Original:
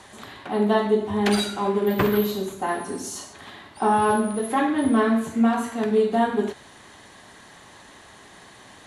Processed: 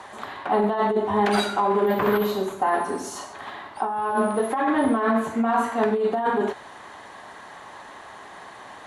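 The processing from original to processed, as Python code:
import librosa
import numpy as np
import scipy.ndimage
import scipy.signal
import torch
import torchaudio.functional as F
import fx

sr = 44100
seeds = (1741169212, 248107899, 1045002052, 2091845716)

y = fx.peak_eq(x, sr, hz=930.0, db=14.0, octaves=2.6)
y = fx.over_compress(y, sr, threshold_db=-14.0, ratio=-1.0)
y = y * librosa.db_to_amplitude(-7.0)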